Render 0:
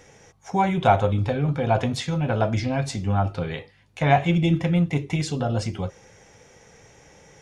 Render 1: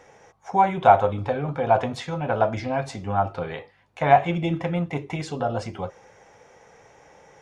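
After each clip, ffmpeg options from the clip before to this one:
-af "equalizer=f=870:w=0.48:g=13,volume=0.376"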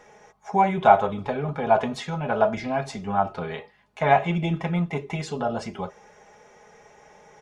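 -af "aecho=1:1:4.8:0.59,volume=0.891"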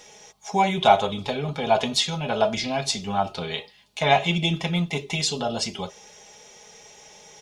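-af "highshelf=f=2400:t=q:w=1.5:g=13.5"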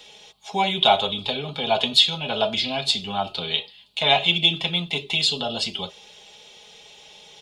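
-filter_complex "[0:a]acrossover=split=190|780|3800[s0][s1][s2][s3];[s0]alimiter=level_in=3.16:limit=0.0631:level=0:latency=1,volume=0.316[s4];[s2]aexciter=amount=8.5:drive=3.9:freq=2900[s5];[s4][s1][s5][s3]amix=inputs=4:normalize=0,volume=0.794"

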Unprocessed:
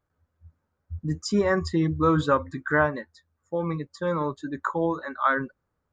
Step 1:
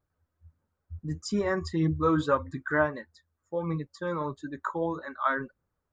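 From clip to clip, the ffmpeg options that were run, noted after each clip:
-af "flanger=delay=0.1:depth=3.1:regen=60:speed=1.6:shape=sinusoidal"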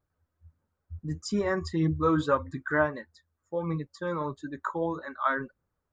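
-af anull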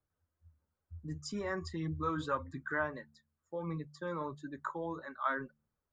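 -filter_complex "[0:a]acrossover=split=120|810|4000[s0][s1][s2][s3];[s1]alimiter=level_in=1.26:limit=0.0631:level=0:latency=1,volume=0.794[s4];[s0][s4][s2][s3]amix=inputs=4:normalize=0,bandreject=f=73.97:t=h:w=4,bandreject=f=147.94:t=h:w=4,bandreject=f=221.91:t=h:w=4,volume=0.473"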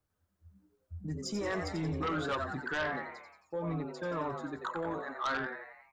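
-filter_complex "[0:a]asplit=7[s0][s1][s2][s3][s4][s5][s6];[s1]adelay=89,afreqshift=110,volume=0.422[s7];[s2]adelay=178,afreqshift=220,volume=0.224[s8];[s3]adelay=267,afreqshift=330,volume=0.119[s9];[s4]adelay=356,afreqshift=440,volume=0.0631[s10];[s5]adelay=445,afreqshift=550,volume=0.0331[s11];[s6]adelay=534,afreqshift=660,volume=0.0176[s12];[s0][s7][s8][s9][s10][s11][s12]amix=inputs=7:normalize=0,aeval=exprs='0.0944*(cos(1*acos(clip(val(0)/0.0944,-1,1)))-cos(1*PI/2))+0.0376*(cos(5*acos(clip(val(0)/0.0944,-1,1)))-cos(5*PI/2))':c=same,volume=0.531"

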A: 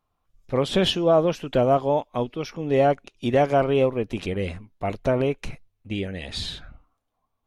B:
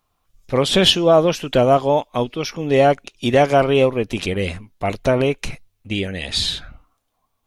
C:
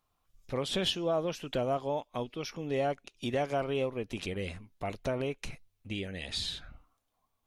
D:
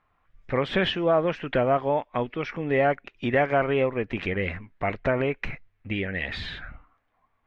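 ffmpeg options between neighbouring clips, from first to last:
-af "highshelf=f=2300:g=8.5,volume=1.68"
-af "acompressor=threshold=0.0178:ratio=1.5,volume=0.398"
-af "lowpass=f=1900:t=q:w=2.9,volume=2.37"

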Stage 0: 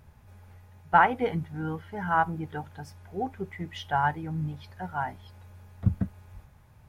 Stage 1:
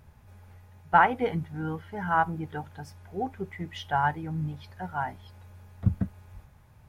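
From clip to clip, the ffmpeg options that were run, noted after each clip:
-af anull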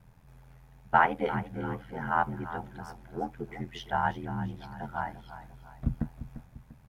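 -af "aeval=exprs='val(0)*sin(2*PI*41*n/s)':c=same,aecho=1:1:346|692|1038|1384:0.224|0.0963|0.0414|0.0178"

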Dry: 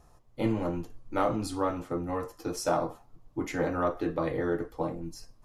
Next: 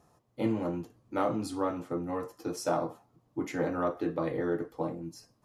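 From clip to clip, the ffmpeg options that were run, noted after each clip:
-af "highpass=140,lowshelf=f=440:g=4.5,volume=0.668"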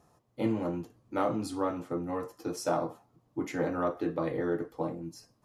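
-af anull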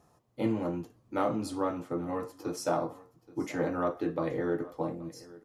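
-af "aecho=1:1:826:0.1"

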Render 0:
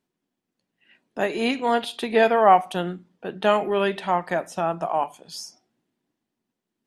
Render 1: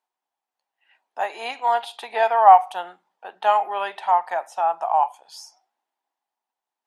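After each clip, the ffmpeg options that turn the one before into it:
-af "highpass=f=830:t=q:w=4.8,volume=0.562"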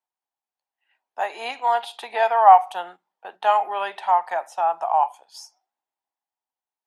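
-filter_complex "[0:a]agate=range=0.398:threshold=0.00794:ratio=16:detection=peak,acrossover=split=380|2800[s0][s1][s2];[s0]alimiter=level_in=5.31:limit=0.0631:level=0:latency=1,volume=0.188[s3];[s3][s1][s2]amix=inputs=3:normalize=0"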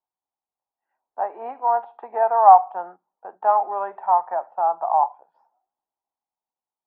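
-af "lowpass=f=1200:w=0.5412,lowpass=f=1200:w=1.3066,volume=1.12"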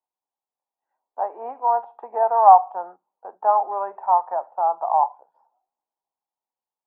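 -af "equalizer=f=250:t=o:w=1:g=5,equalizer=f=500:t=o:w=1:g=8,equalizer=f=1000:t=o:w=1:g=8,volume=0.355"

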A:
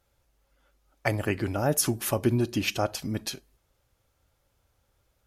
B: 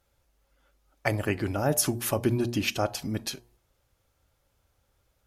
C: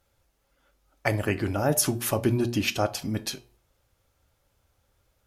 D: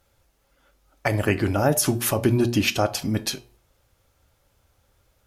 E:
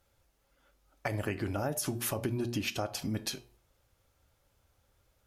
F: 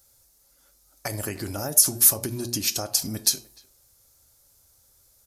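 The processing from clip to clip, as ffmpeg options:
-af "bandreject=f=119:t=h:w=4,bandreject=f=238:t=h:w=4,bandreject=f=357:t=h:w=4,bandreject=f=476:t=h:w=4,bandreject=f=595:t=h:w=4,bandreject=f=714:t=h:w=4,bandreject=f=833:t=h:w=4,bandreject=f=952:t=h:w=4,bandreject=f=1071:t=h:w=4"
-af "flanger=delay=9.2:depth=2.4:regen=-79:speed=0.4:shape=triangular,volume=2"
-af "alimiter=limit=0.2:level=0:latency=1:release=112,volume=1.78"
-af "acompressor=threshold=0.0631:ratio=4,volume=0.473"
-filter_complex "[0:a]aresample=32000,aresample=44100,asplit=2[s0][s1];[s1]adelay=300,highpass=300,lowpass=3400,asoftclip=type=hard:threshold=0.0473,volume=0.0794[s2];[s0][s2]amix=inputs=2:normalize=0,aexciter=amount=4.6:drive=7.8:freq=4200,volume=1.19"

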